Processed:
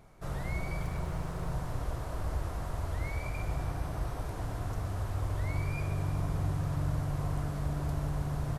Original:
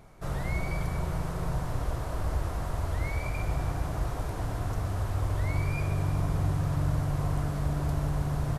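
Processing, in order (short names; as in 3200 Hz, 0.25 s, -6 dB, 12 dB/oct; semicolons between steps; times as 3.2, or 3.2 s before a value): 0.83–1.5 self-modulated delay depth 0.13 ms; 3.64–4.25 notch 7000 Hz, Q 12; gain -4 dB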